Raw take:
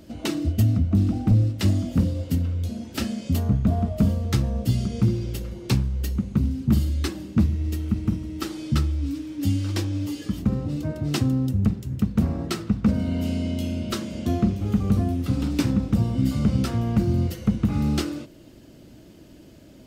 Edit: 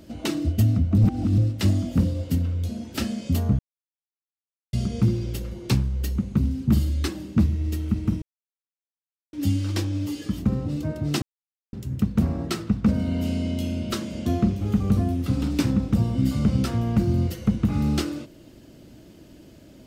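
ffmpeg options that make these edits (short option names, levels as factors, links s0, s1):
-filter_complex "[0:a]asplit=9[s0][s1][s2][s3][s4][s5][s6][s7][s8];[s0]atrim=end=0.982[s9];[s1]atrim=start=0.978:end=1.382,asetpts=PTS-STARTPTS,areverse[s10];[s2]atrim=start=1.378:end=3.59,asetpts=PTS-STARTPTS,afade=t=out:st=2.208:d=0.004:c=hsin[s11];[s3]atrim=start=3.59:end=4.73,asetpts=PTS-STARTPTS,volume=0[s12];[s4]atrim=start=4.73:end=8.22,asetpts=PTS-STARTPTS,afade=t=in:d=0.004:c=hsin,afade=t=out:st=3.486:d=0.004:c=hsin[s13];[s5]atrim=start=8.22:end=9.33,asetpts=PTS-STARTPTS,volume=0[s14];[s6]atrim=start=9.33:end=11.22,asetpts=PTS-STARTPTS,afade=t=in:d=0.004:c=hsin,afade=t=out:st=1.886:d=0.004:c=hsin[s15];[s7]atrim=start=11.22:end=11.73,asetpts=PTS-STARTPTS,volume=0[s16];[s8]atrim=start=11.73,asetpts=PTS-STARTPTS,afade=t=in:d=0.004:c=hsin[s17];[s9][s10]acrossfade=d=0.004:c1=hsin:c2=hsin[s18];[s11][s12][s13][s14][s15][s16][s17]concat=n=7:v=0:a=1[s19];[s18][s19]acrossfade=d=0.004:c1=hsin:c2=hsin"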